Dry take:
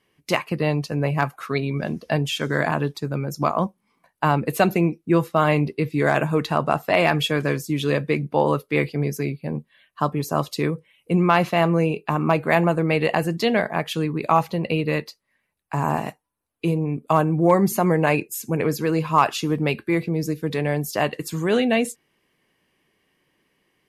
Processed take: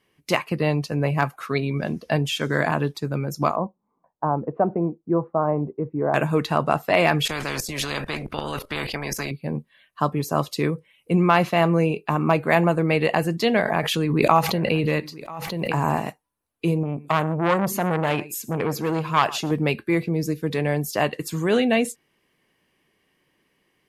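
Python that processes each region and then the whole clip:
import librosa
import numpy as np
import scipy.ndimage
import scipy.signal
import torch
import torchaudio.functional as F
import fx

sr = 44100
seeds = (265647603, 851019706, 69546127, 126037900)

y = fx.chain(x, sr, fx.lowpass(hz=1000.0, slope=24),
    fx.low_shelf(hz=300.0, db=-7.0), at=(3.56, 6.14))
y = fx.chain(y, sr, fx.level_steps(step_db=16),
    fx.tilt_eq(slope=-3.0),
    fx.spectral_comp(ratio=4.0), at=(7.25, 9.31))
y = fx.chain(y, sr, fx.echo_single(ms=987, db=-21.0),
    fx.pre_swell(db_per_s=29.0), at=(13.55, 16.01))
y = fx.chain(y, sr, fx.peak_eq(hz=9800.0, db=-2.5, octaves=0.26),
    fx.echo_single(ms=116, db=-20.5),
    fx.transformer_sat(knee_hz=1200.0), at=(16.83, 19.51))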